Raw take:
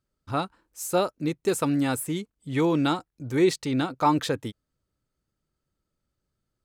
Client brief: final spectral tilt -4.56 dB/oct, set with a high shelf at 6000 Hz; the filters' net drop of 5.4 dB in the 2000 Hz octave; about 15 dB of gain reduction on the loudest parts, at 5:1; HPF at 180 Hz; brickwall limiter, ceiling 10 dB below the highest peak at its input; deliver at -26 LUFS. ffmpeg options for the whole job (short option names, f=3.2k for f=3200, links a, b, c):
-af "highpass=180,equalizer=f=2k:t=o:g=-8,highshelf=f=6k:g=4,acompressor=threshold=-34dB:ratio=5,volume=14dB,alimiter=limit=-15.5dB:level=0:latency=1"